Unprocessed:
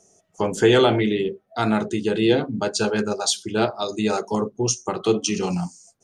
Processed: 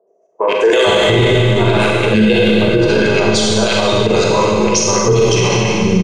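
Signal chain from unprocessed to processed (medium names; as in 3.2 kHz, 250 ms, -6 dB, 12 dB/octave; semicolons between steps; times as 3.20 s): rattle on loud lows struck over -26 dBFS, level -23 dBFS; bass shelf 110 Hz +6 dB; feedback comb 970 Hz, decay 0.3 s, mix 70%; level-controlled noise filter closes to 500 Hz, open at -23.5 dBFS; three bands offset in time mids, highs, lows 70/460 ms, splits 370/1500 Hz; level held to a coarse grid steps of 15 dB; treble shelf 4.8 kHz +6.5 dB; comb 1.9 ms, depth 48%; Schroeder reverb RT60 2.2 s, combs from 33 ms, DRR -2 dB; loudness maximiser +31 dB; trim -2.5 dB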